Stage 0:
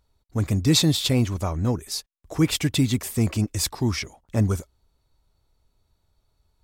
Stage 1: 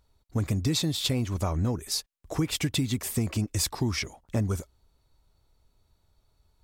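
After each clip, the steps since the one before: compressor 10:1, threshold -24 dBFS, peak gain reduction 11 dB; gain +1 dB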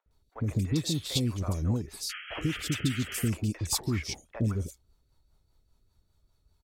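three bands offset in time mids, lows, highs 60/110 ms, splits 570/2600 Hz; painted sound noise, 2.09–3.3, 1200–3300 Hz -39 dBFS; rotary speaker horn 5 Hz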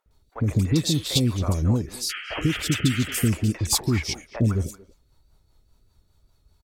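wow and flutter 28 cents; speakerphone echo 0.23 s, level -16 dB; gain +7 dB

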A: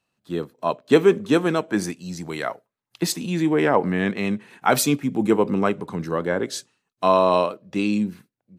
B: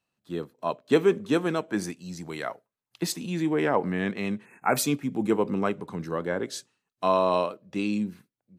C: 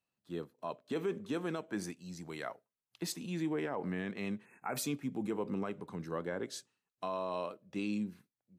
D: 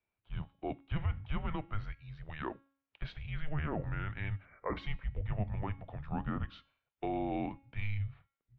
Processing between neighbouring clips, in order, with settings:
spectral delete 4.45–4.77, 2700–6300 Hz; gain -5.5 dB
limiter -19 dBFS, peak gain reduction 10 dB; gain -8 dB
mistuned SSB -310 Hz 190–3400 Hz; de-hum 274.8 Hz, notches 36; gain +2.5 dB

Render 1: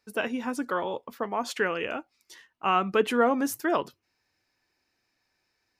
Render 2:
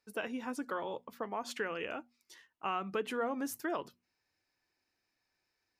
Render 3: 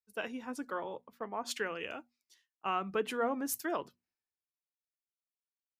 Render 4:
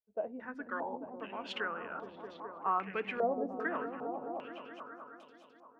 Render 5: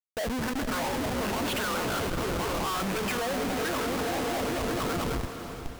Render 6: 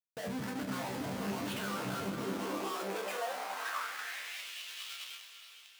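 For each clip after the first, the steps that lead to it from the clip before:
notches 60/120/180/240 Hz; compressor 2.5:1, threshold -26 dBFS, peak gain reduction 6.5 dB; gain -7 dB
three-band expander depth 100%
on a send: repeats that get brighter 0.211 s, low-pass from 200 Hz, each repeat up 1 oct, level 0 dB; on the sum: stepped low-pass 2.5 Hz 640–3700 Hz; gain -5.5 dB
Schmitt trigger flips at -48.5 dBFS; diffused feedback echo 0.458 s, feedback 47%, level -9.5 dB; gain +9 dB
high-pass sweep 140 Hz -> 2900 Hz, 1.97–4.52; resonator bank C2 fifth, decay 0.27 s

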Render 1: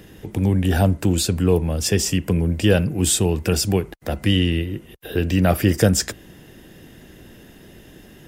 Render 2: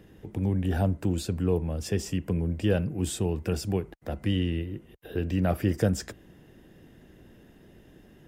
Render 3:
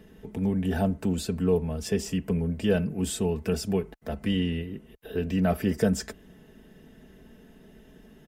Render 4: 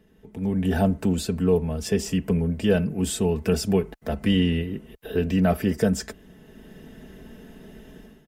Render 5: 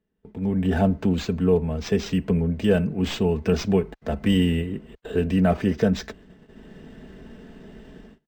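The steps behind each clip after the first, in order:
high shelf 2200 Hz -9 dB; gain -8 dB
comb 4.6 ms, depth 65%
AGC gain up to 15 dB; gain -7.5 dB
tracing distortion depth 0.03 ms; gate -48 dBFS, range -20 dB; decimation joined by straight lines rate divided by 4×; gain +1 dB

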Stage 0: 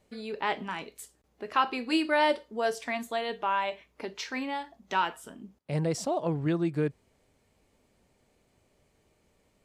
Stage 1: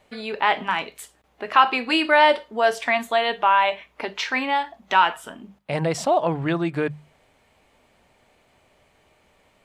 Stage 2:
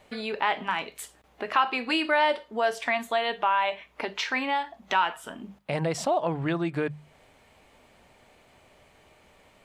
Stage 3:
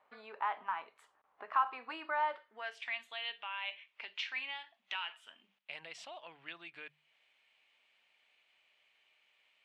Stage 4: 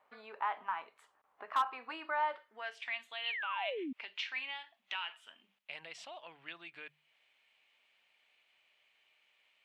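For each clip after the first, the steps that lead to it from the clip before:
notches 50/100/150/200 Hz; in parallel at -2.5 dB: limiter -23.5 dBFS, peak gain reduction 11 dB; on the sum: band shelf 1500 Hz +8 dB 2.9 oct
compressor 1.5:1, threshold -39 dBFS, peak gain reduction 10.5 dB; gain +2.5 dB
band-pass sweep 1100 Hz -> 2800 Hz, 2.25–2.83; gain -5.5 dB
painted sound fall, 3.24–3.93, 240–3200 Hz -39 dBFS; overloaded stage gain 23.5 dB

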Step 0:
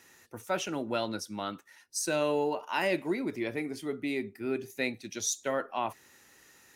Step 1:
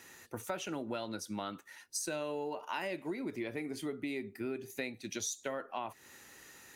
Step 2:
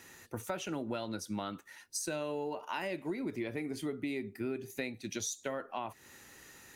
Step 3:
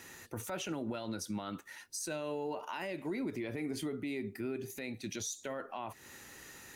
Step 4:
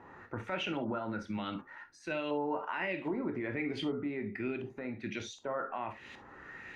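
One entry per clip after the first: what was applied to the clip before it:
notch 5400 Hz, Q 14; compressor, threshold -39 dBFS, peak gain reduction 14 dB; gain +3.5 dB
low shelf 190 Hz +6 dB
limiter -32.5 dBFS, peak gain reduction 11 dB; gain +3 dB
LFO low-pass saw up 1.3 Hz 910–3300 Hz; on a send at -8 dB: reverb, pre-delay 16 ms; on the sum: gain +1 dB

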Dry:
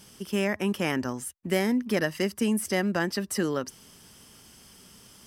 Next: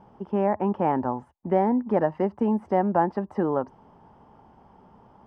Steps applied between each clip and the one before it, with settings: synth low-pass 860 Hz, resonance Q 4.9; gain +1 dB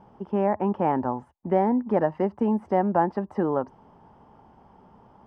nothing audible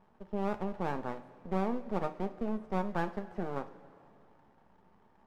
half-wave rectifier; two-slope reverb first 0.29 s, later 2.8 s, from -17 dB, DRR 7.5 dB; gain -9 dB

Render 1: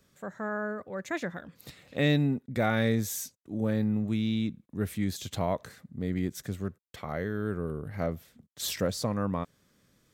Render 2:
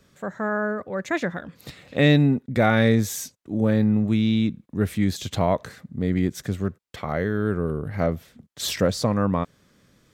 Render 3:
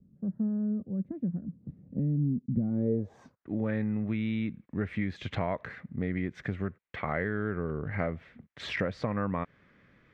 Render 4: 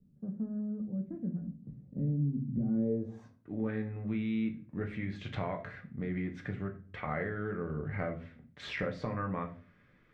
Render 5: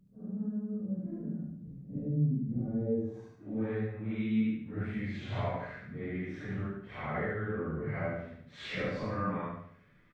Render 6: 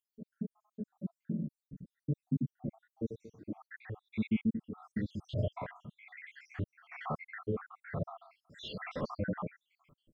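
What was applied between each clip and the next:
high shelf 8100 Hz -8.5 dB; gain +8 dB
compressor 6:1, threshold -24 dBFS, peak gain reduction 11 dB; low-pass sweep 210 Hz -> 2100 Hz, 2.63–3.53; gain -3.5 dB
reverb RT60 0.40 s, pre-delay 5 ms, DRR 2.5 dB; gain -6 dB
phase scrambler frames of 0.2 s; on a send: feedback echo 73 ms, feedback 41%, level -6 dB
random spectral dropouts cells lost 78%; gain +2.5 dB

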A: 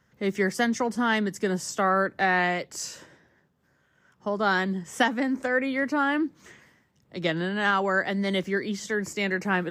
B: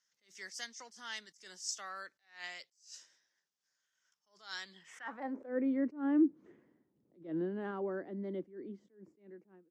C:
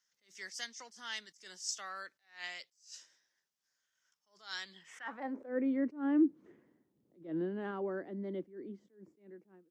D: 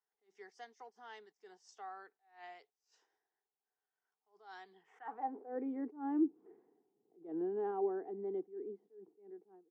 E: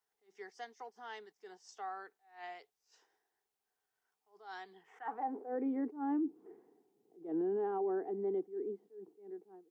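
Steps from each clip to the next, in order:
ending faded out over 2.87 s; band-pass sweep 5700 Hz -> 320 Hz, 4.61–5.53; attack slew limiter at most 160 dB/s
dynamic EQ 3000 Hz, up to +3 dB, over -57 dBFS, Q 1.1
double band-pass 570 Hz, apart 0.81 oct; gain +7.5 dB
limiter -34 dBFS, peak gain reduction 11 dB; gain +5 dB

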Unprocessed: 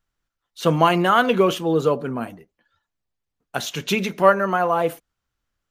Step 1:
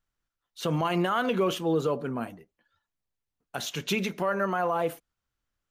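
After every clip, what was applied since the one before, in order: limiter -12 dBFS, peak gain reduction 10.5 dB; gain -5 dB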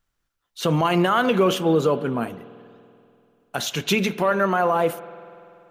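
spring tank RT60 2.7 s, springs 48 ms, chirp 30 ms, DRR 15.5 dB; gain +7 dB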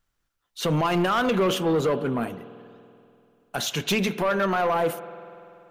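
soft clip -17 dBFS, distortion -13 dB

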